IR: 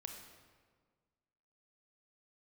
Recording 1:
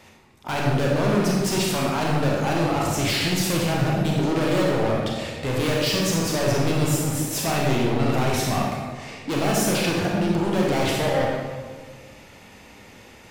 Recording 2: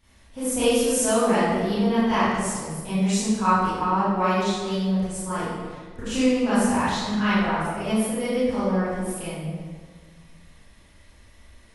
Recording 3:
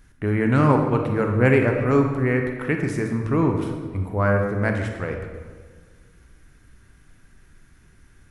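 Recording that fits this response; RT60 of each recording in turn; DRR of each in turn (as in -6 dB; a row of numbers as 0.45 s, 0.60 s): 3; 1.6 s, 1.6 s, 1.6 s; -3.5 dB, -13.5 dB, 3.0 dB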